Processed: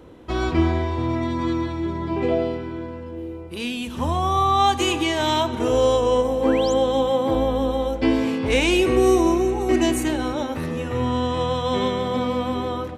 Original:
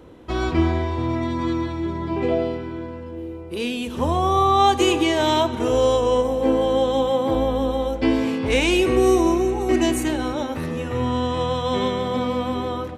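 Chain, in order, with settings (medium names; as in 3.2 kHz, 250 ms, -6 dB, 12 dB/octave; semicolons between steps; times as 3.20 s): 3.47–5.47 s: peaking EQ 450 Hz -8 dB 0.85 oct; 6.43–6.74 s: painted sound rise 870–8000 Hz -35 dBFS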